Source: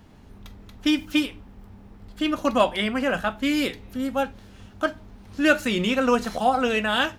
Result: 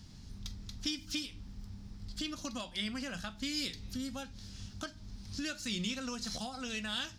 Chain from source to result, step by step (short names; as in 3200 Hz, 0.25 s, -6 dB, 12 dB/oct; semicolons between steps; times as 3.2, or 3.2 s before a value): compressor 5:1, threshold -30 dBFS, peak gain reduction 16 dB; EQ curve 160 Hz 0 dB, 450 Hz -14 dB, 780 Hz -13 dB, 2800 Hz -4 dB, 5000 Hz +12 dB, 13000 Hz -5 dB